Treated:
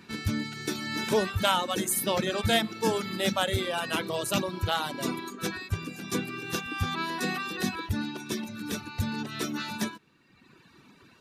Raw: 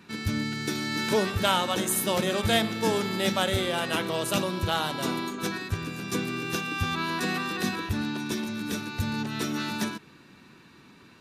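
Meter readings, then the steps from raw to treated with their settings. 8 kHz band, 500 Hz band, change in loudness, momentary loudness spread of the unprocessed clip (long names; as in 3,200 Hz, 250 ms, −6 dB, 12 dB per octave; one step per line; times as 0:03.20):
−1.0 dB, −1.5 dB, −2.0 dB, 7 LU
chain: echo ahead of the sound 157 ms −23 dB
reverb reduction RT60 1.2 s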